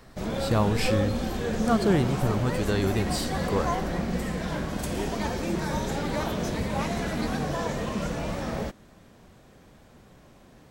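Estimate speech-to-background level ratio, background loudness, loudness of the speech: 1.5 dB, −29.5 LKFS, −28.0 LKFS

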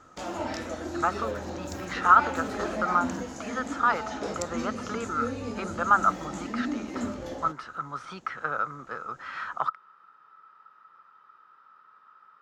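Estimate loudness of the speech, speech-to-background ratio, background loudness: −28.5 LKFS, 6.0 dB, −34.5 LKFS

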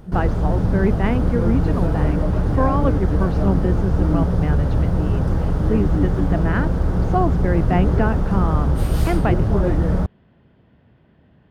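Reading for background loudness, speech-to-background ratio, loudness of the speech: −20.5 LKFS, −4.0 dB, −24.5 LKFS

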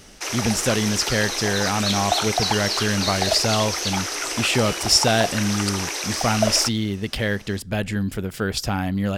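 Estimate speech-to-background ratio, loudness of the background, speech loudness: 1.0 dB, −24.0 LKFS, −23.0 LKFS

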